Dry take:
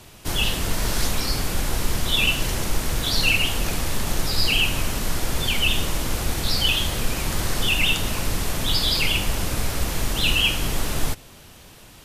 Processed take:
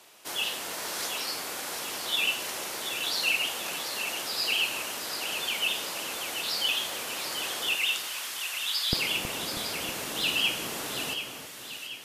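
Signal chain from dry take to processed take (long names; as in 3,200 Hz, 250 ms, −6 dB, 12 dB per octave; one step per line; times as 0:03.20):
high-pass filter 470 Hz 12 dB per octave, from 0:07.75 1,300 Hz, from 0:08.93 270 Hz
echo with a time of its own for lows and highs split 1,400 Hz, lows 320 ms, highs 733 ms, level −8 dB
level −6 dB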